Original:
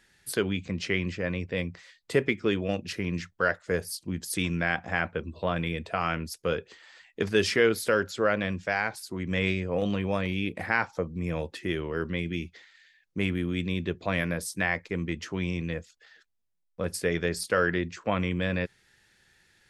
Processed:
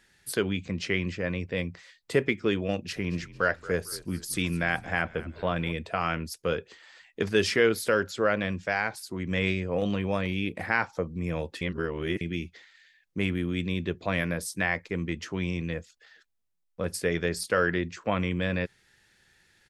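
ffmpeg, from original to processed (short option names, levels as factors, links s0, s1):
-filter_complex "[0:a]asplit=3[s0][s1][s2];[s0]afade=t=out:st=2.95:d=0.02[s3];[s1]asplit=5[s4][s5][s6][s7][s8];[s5]adelay=225,afreqshift=-49,volume=0.126[s9];[s6]adelay=450,afreqshift=-98,volume=0.0556[s10];[s7]adelay=675,afreqshift=-147,volume=0.0243[s11];[s8]adelay=900,afreqshift=-196,volume=0.0107[s12];[s4][s9][s10][s11][s12]amix=inputs=5:normalize=0,afade=t=in:st=2.95:d=0.02,afade=t=out:st=5.71:d=0.02[s13];[s2]afade=t=in:st=5.71:d=0.02[s14];[s3][s13][s14]amix=inputs=3:normalize=0,asplit=3[s15][s16][s17];[s15]atrim=end=11.612[s18];[s16]atrim=start=11.608:end=12.212,asetpts=PTS-STARTPTS,areverse[s19];[s17]atrim=start=12.208[s20];[s18][s19]acrossfade=d=0.004:c1=hsin:c2=hsin[s21];[s21][s20]acrossfade=d=0.004:c1=hsin:c2=hsin"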